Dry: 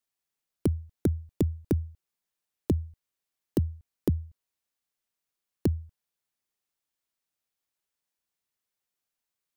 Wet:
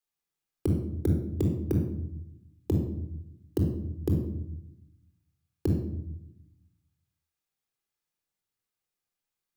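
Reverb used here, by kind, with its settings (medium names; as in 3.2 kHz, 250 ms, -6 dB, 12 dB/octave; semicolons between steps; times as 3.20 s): simulated room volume 2300 m³, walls furnished, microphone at 3.9 m; trim -5 dB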